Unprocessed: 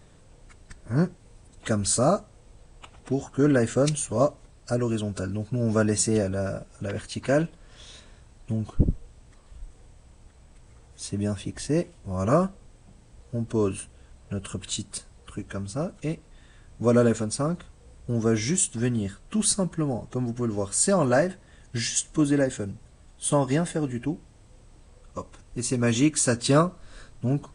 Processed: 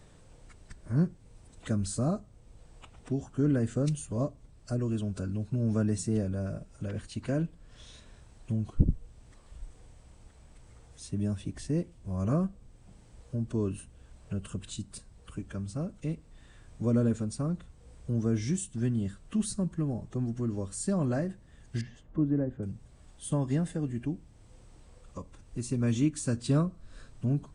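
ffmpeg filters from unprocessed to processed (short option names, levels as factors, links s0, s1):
-filter_complex "[0:a]asettb=1/sr,asplit=3[s0][s1][s2];[s0]atrim=end=21.814[s3];[s1]atrim=start=21.81:end=22.63,asetpts=PTS-STARTPTS,afade=t=in:d=0.004:c=qsin,afade=t=out:st=0.816:d=0.004:c=qsin,lowpass=1100[s4];[s2]atrim=start=22.626[s5];[s3][s4]acrossfade=d=0.004:c1=hsin:c2=qsin[s6];[s6][s5]acrossfade=d=0.004:c1=qsin:c2=hsin,acrossover=split=300[s7][s8];[s8]acompressor=threshold=0.00158:ratio=1.5[s9];[s7][s9]amix=inputs=2:normalize=0,volume=0.794"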